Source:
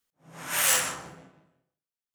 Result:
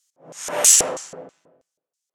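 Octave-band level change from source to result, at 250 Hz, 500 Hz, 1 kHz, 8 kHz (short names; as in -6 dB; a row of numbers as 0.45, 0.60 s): +7.0, +13.0, +3.5, +12.0 dB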